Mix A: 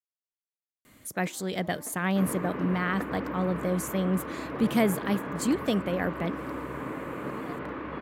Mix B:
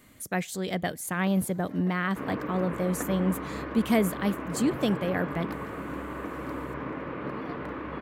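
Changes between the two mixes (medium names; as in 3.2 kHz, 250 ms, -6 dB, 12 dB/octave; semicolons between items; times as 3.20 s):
speech: entry -0.85 s; master: add bass shelf 66 Hz +5.5 dB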